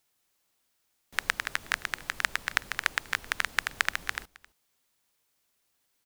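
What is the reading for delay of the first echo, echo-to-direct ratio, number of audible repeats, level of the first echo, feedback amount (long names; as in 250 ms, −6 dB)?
266 ms, −21.5 dB, 1, −21.5 dB, repeats not evenly spaced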